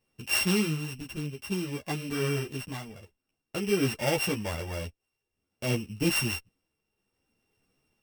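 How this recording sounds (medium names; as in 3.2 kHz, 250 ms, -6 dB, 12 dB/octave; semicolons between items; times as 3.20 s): a buzz of ramps at a fixed pitch in blocks of 16 samples; tremolo triangle 0.55 Hz, depth 65%; a shimmering, thickened sound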